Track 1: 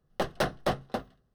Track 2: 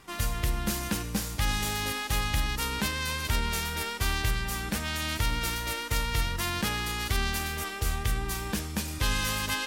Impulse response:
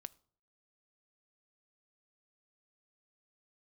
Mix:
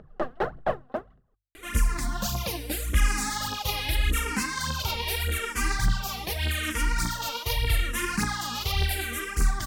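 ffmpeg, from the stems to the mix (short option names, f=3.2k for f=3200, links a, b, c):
-filter_complex "[0:a]lowpass=1.4k,lowshelf=f=490:g=-5,volume=2dB[a];[1:a]asplit=2[b][c];[c]afreqshift=-0.8[d];[b][d]amix=inputs=2:normalize=1,adelay=1550,volume=0dB,asplit=2[e][f];[f]volume=-7dB[g];[2:a]atrim=start_sample=2205[h];[g][h]afir=irnorm=-1:irlink=0[i];[a][e][i]amix=inputs=3:normalize=0,bandreject=f=50:t=h:w=6,bandreject=f=100:t=h:w=6,acompressor=mode=upward:threshold=-45dB:ratio=2.5,aphaser=in_gain=1:out_gain=1:delay=4.3:decay=0.68:speed=1.7:type=triangular"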